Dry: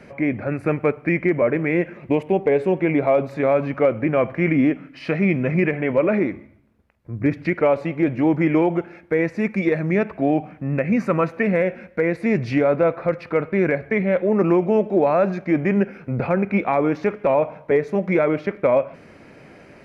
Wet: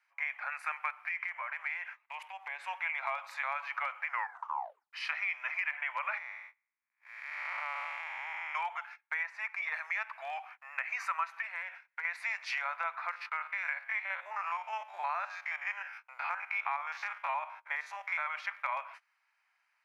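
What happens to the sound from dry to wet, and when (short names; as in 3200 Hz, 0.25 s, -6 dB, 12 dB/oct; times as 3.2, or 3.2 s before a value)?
1.05–2.67 compressor 2.5:1, threshold -25 dBFS
4.05 tape stop 0.88 s
6.18–8.55 time blur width 0.399 s
9.23–9.74 high shelf 3000 Hz -12 dB
11.28–12.05 compressor 4:1, threshold -25 dBFS
13.11–18.27 stepped spectrum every 50 ms
whole clip: gate -35 dBFS, range -24 dB; steep high-pass 880 Hz 48 dB/oct; compressor 3:1, threshold -32 dBFS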